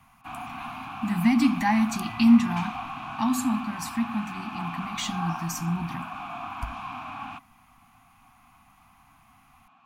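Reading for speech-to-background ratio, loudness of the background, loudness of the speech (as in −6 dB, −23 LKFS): 10.5 dB, −36.5 LKFS, −26.0 LKFS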